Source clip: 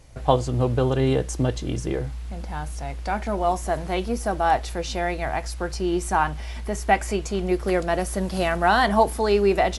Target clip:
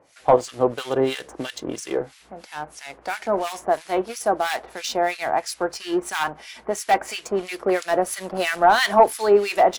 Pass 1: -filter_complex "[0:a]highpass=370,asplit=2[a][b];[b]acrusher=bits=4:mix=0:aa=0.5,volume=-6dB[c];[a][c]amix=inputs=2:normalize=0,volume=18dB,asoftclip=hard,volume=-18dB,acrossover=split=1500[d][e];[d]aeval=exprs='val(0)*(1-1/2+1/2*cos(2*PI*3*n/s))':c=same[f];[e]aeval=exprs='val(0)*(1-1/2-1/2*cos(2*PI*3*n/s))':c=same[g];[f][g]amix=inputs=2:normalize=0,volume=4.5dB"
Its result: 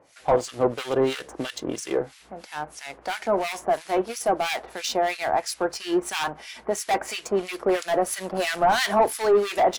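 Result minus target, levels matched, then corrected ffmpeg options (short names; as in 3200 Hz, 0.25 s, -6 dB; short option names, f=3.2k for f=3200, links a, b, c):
overloaded stage: distortion +8 dB
-filter_complex "[0:a]highpass=370,asplit=2[a][b];[b]acrusher=bits=4:mix=0:aa=0.5,volume=-6dB[c];[a][c]amix=inputs=2:normalize=0,volume=10.5dB,asoftclip=hard,volume=-10.5dB,acrossover=split=1500[d][e];[d]aeval=exprs='val(0)*(1-1/2+1/2*cos(2*PI*3*n/s))':c=same[f];[e]aeval=exprs='val(0)*(1-1/2-1/2*cos(2*PI*3*n/s))':c=same[g];[f][g]amix=inputs=2:normalize=0,volume=4.5dB"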